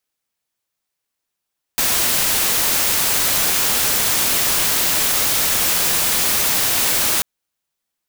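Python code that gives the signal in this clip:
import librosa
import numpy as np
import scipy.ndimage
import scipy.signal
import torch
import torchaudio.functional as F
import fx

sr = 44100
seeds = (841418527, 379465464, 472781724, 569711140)

y = fx.noise_colour(sr, seeds[0], length_s=5.44, colour='white', level_db=-17.5)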